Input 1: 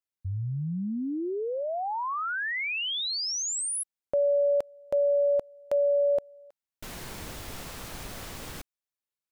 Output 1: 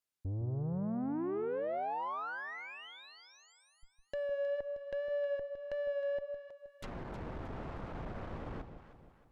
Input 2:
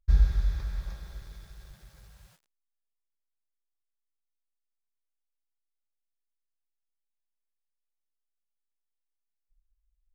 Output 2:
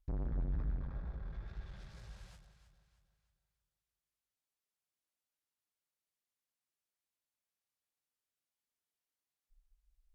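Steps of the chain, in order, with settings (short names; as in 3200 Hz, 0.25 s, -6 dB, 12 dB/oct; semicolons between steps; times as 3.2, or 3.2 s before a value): tube stage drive 38 dB, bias 0.4; treble ducked by the level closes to 1200 Hz, closed at -42 dBFS; wow and flutter 26 cents; on a send: echo with dull and thin repeats by turns 0.157 s, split 810 Hz, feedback 64%, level -7.5 dB; on the sum: gain +3 dB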